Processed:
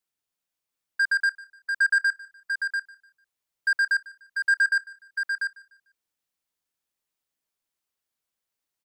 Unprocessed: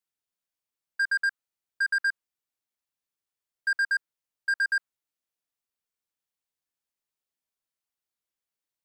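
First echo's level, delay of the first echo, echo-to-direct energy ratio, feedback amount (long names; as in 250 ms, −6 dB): −20.0 dB, 149 ms, −5.0 dB, repeats not evenly spaced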